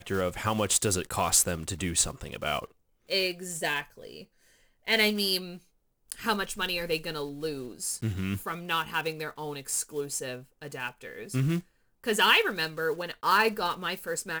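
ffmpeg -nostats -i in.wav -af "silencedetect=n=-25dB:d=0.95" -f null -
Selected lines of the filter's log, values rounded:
silence_start: 3.80
silence_end: 4.88 | silence_duration: 1.08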